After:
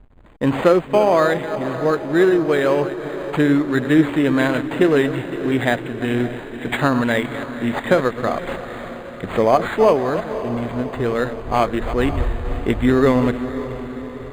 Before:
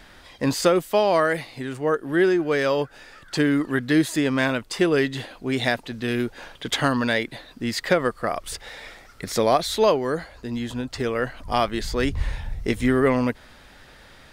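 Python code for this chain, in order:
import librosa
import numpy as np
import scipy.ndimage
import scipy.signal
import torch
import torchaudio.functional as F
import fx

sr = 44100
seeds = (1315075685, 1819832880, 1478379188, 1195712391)

y = fx.reverse_delay(x, sr, ms=173, wet_db=-11.0)
y = fx.backlash(y, sr, play_db=-36.0)
y = fx.echo_diffused(y, sr, ms=539, feedback_pct=59, wet_db=-12)
y = np.interp(np.arange(len(y)), np.arange(len(y))[::8], y[::8])
y = F.gain(torch.from_numpy(y), 4.5).numpy()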